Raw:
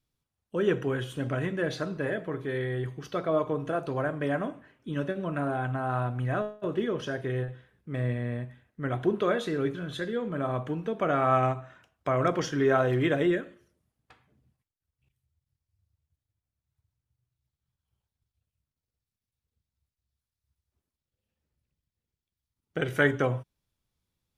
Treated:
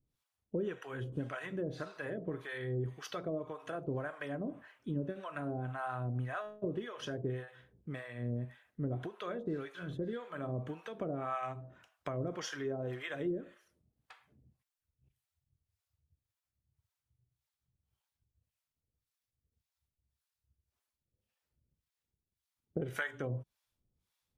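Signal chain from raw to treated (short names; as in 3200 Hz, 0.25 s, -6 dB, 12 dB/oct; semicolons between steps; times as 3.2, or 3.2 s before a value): compressor, threshold -33 dBFS, peak gain reduction 15 dB; harmonic tremolo 1.8 Hz, depth 100%, crossover 630 Hz; gain +2.5 dB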